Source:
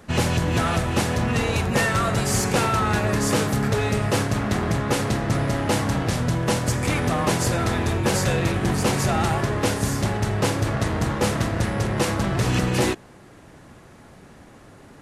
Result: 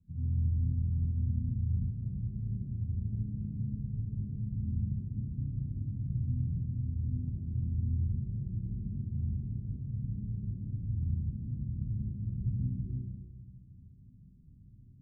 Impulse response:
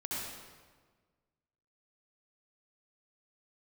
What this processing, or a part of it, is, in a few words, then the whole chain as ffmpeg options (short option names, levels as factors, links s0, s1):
club heard from the street: -filter_complex "[0:a]alimiter=limit=0.15:level=0:latency=1:release=290,lowpass=f=170:w=0.5412,lowpass=f=170:w=1.3066[s0];[1:a]atrim=start_sample=2205[s1];[s0][s1]afir=irnorm=-1:irlink=0,asettb=1/sr,asplit=3[s2][s3][s4];[s2]atrim=end=4.014[s5];[s3]atrim=start=4.01:end=4.92,asetpts=PTS-STARTPTS,afade=t=in:d=0.004:c=qsin,afade=t=out:st=0.906:d=0.004:c=qsin,lowpass=1300[s6];[s4]atrim=start=4.916[s7];[s5][s6]acrossfade=d=0.004:c1=hsin:c2=qsin[s8];[s8][s7]acrossfade=d=0.004:c1=qsin:c2=hsin,volume=0.376"